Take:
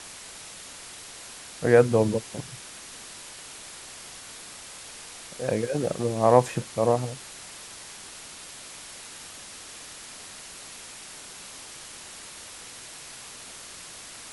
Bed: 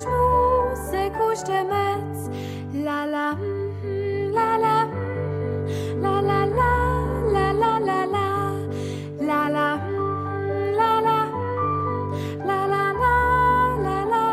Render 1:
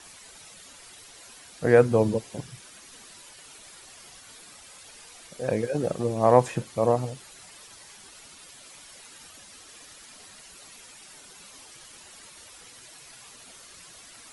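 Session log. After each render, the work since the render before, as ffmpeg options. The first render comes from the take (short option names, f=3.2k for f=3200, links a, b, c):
-af "afftdn=nr=10:nf=-44"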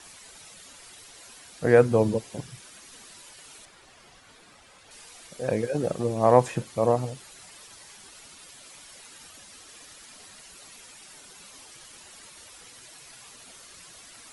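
-filter_complex "[0:a]asettb=1/sr,asplit=3[a][b][c];[a]atrim=end=3.654[d];[b]atrim=start=3.65:end=4.91,asetpts=PTS-STARTPTS,afade=t=in:d=0.004:c=qsin,afade=t=out:st=1.256:d=0.004:c=qsin,lowpass=f=2.3k:p=1[e];[c]atrim=start=4.906[f];[d][e]acrossfade=d=0.004:c1=hsin:c2=qsin[g];[g][f]acrossfade=d=0.004:c1=qsin:c2=hsin"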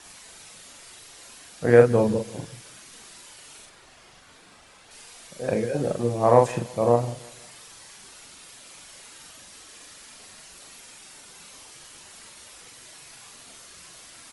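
-filter_complex "[0:a]asplit=2[a][b];[b]adelay=42,volume=-4dB[c];[a][c]amix=inputs=2:normalize=0,aecho=1:1:167|334|501:0.0891|0.0374|0.0157"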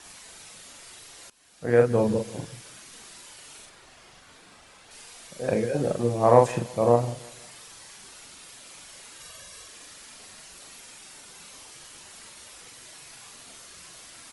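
-filter_complex "[0:a]asettb=1/sr,asplit=3[a][b][c];[a]atrim=end=9.204[d];[b]atrim=start=9.2:end=9.68,asetpts=PTS-STARTPTS,afade=t=in:d=0.004:c=qsin,afade=t=out:st=0.476:d=0.004:c=qsin,aecho=1:1:1.8:0.65,atrim=end_sample=21168[e];[c]atrim=start=9.676[f];[d][e]acrossfade=d=0.004:c1=hsin:c2=qsin[g];[g][f]acrossfade=d=0.004:c1=qsin:c2=hsin,asplit=2[h][i];[h]atrim=end=1.3,asetpts=PTS-STARTPTS,afade=t=out:st=1.296:d=0.004:c=hsin:silence=0.1[j];[i]atrim=start=1.3,asetpts=PTS-STARTPTS,afade=t=in:d=0.91:silence=0.1[k];[j][k]concat=n=2:v=0:a=1"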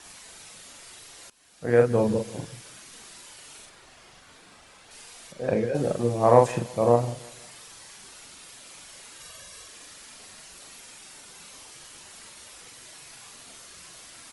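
-filter_complex "[0:a]asettb=1/sr,asplit=3[a][b][c];[a]atrim=end=5.324[d];[b]atrim=start=5.32:end=5.75,asetpts=PTS-STARTPTS,afade=t=in:d=0.004:c=qsin,afade=t=out:st=0.426:d=0.004:c=qsin,aemphasis=mode=reproduction:type=50fm[e];[c]atrim=start=5.746[f];[d][e]acrossfade=d=0.004:c1=hsin:c2=qsin[g];[g][f]acrossfade=d=0.004:c1=qsin:c2=hsin"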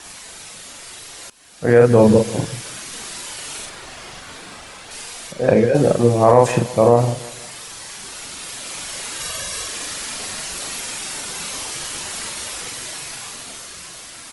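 -af "dynaudnorm=f=260:g=13:m=9dB,alimiter=level_in=9dB:limit=-1dB:release=50:level=0:latency=1"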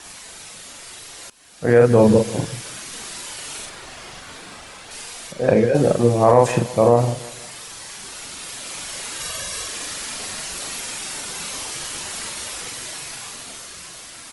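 -af "volume=-1.5dB"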